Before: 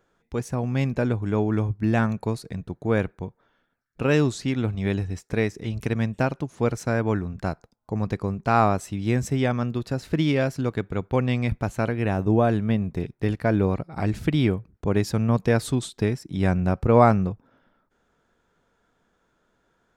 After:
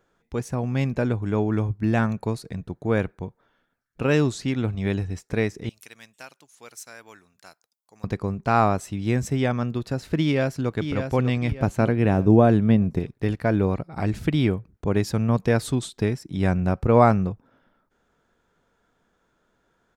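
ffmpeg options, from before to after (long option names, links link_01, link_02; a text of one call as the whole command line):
ffmpeg -i in.wav -filter_complex "[0:a]asettb=1/sr,asplit=3[link_01][link_02][link_03];[link_01]atrim=end=5.694[link_04];[link_02]atrim=start=5.69:end=8.04,asetpts=PTS-STARTPTS,afade=type=in:duration=0.004:curve=qsin,afade=type=out:start_time=2.346:duration=0.004:curve=qsin,aderivative[link_05];[link_03]atrim=start=8.036[link_06];[link_04][link_05]acrossfade=duration=0.004:curve1=hsin:curve2=qsin[link_07];[link_07][link_06]acrossfade=duration=0.004:curve1=qsin:curve2=hsin,asplit=2[link_08][link_09];[link_09]afade=type=in:start_time=10.21:duration=0.01,afade=type=out:start_time=10.77:duration=0.01,aecho=0:1:600|1200|1800|2400:0.446684|0.156339|0.0547187|0.0191516[link_10];[link_08][link_10]amix=inputs=2:normalize=0,asettb=1/sr,asplit=3[link_11][link_12][link_13];[link_11]atrim=end=11.604[link_14];[link_12]atrim=start=11.6:end=12.99,asetpts=PTS-STARTPTS,afade=type=in:duration=0.004:curve=qsin,afade=type=out:start_time=1.386:duration=0.004:curve=qsin,equalizer=frequency=220:width=0.37:gain=5.5[link_15];[link_13]atrim=start=12.986[link_16];[link_14][link_15]acrossfade=duration=0.004:curve1=hsin:curve2=qsin[link_17];[link_17][link_16]acrossfade=duration=0.004:curve1=qsin:curve2=hsin" out.wav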